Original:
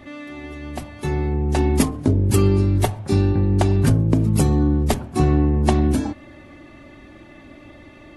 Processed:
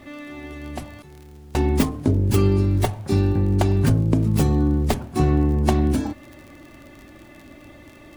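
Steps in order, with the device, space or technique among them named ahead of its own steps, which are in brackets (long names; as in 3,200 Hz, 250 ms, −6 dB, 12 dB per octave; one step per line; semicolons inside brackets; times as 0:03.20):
0:01.02–0:01.69: noise gate with hold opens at −10 dBFS
record under a worn stylus (stylus tracing distortion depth 0.11 ms; surface crackle 39 per second −33 dBFS; pink noise bed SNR 39 dB)
level −1.5 dB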